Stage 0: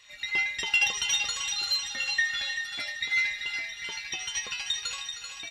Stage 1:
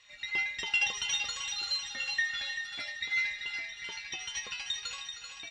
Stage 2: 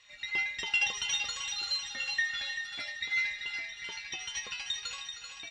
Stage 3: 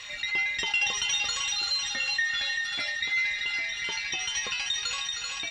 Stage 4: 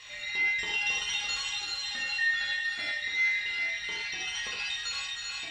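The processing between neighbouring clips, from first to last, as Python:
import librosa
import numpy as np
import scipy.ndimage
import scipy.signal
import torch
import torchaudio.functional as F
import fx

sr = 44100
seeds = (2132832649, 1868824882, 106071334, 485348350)

y1 = scipy.signal.sosfilt(scipy.signal.bessel(4, 6700.0, 'lowpass', norm='mag', fs=sr, output='sos'), x)
y1 = y1 * 10.0 ** (-4.0 / 20.0)
y2 = y1
y3 = fx.env_flatten(y2, sr, amount_pct=50)
y3 = y3 * 10.0 ** (1.0 / 20.0)
y4 = fx.rev_gated(y3, sr, seeds[0], gate_ms=140, shape='flat', drr_db=-4.0)
y4 = y4 * 10.0 ** (-8.5 / 20.0)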